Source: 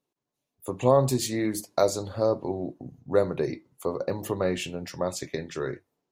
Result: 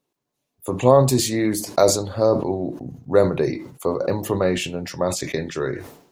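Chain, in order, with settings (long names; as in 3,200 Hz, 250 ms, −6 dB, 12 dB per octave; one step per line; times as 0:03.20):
level that may fall only so fast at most 89 dB per second
level +6 dB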